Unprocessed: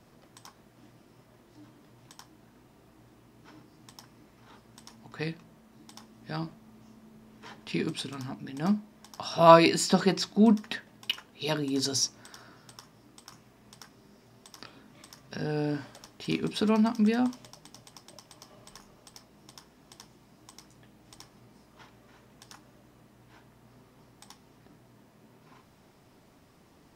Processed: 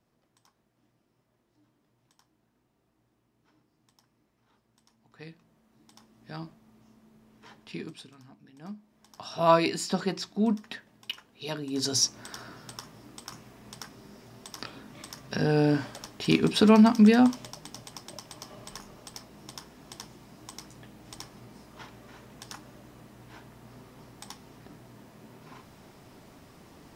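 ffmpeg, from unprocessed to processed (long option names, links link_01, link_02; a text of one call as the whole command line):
ffmpeg -i in.wav -af "volume=17dB,afade=type=in:start_time=4.99:duration=1.32:silence=0.316228,afade=type=out:start_time=7.54:duration=0.61:silence=0.316228,afade=type=in:start_time=8.76:duration=0.46:silence=0.316228,afade=type=in:start_time=11.66:duration=0.67:silence=0.251189" out.wav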